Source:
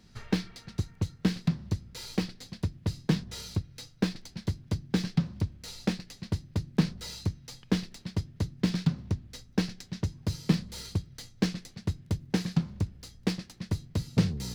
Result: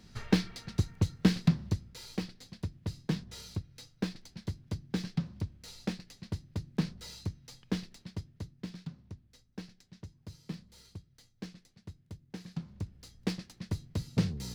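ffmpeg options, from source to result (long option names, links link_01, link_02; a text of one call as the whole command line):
ffmpeg -i in.wav -af "volume=14dB,afade=type=out:start_time=1.5:duration=0.49:silence=0.398107,afade=type=out:start_time=7.85:duration=0.88:silence=0.316228,afade=type=in:start_time=12.39:duration=0.89:silence=0.251189" out.wav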